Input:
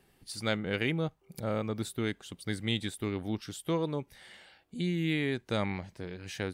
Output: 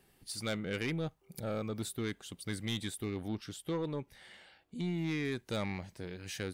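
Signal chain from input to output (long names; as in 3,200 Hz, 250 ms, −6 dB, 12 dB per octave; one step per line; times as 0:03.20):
high-shelf EQ 6,100 Hz +5 dB, from 0:03.28 −3.5 dB, from 0:05.25 +8 dB
soft clipping −26 dBFS, distortion −13 dB
level −2 dB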